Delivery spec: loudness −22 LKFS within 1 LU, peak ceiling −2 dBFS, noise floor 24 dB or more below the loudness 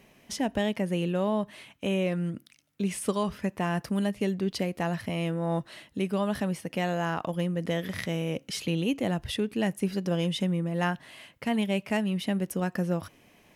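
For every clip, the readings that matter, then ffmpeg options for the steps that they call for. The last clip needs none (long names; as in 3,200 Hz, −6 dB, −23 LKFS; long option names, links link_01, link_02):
integrated loudness −30.0 LKFS; sample peak −13.5 dBFS; target loudness −22.0 LKFS
→ -af "volume=8dB"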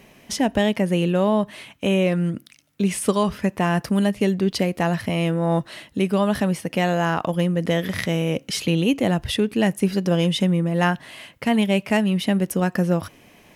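integrated loudness −22.0 LKFS; sample peak −5.5 dBFS; background noise floor −53 dBFS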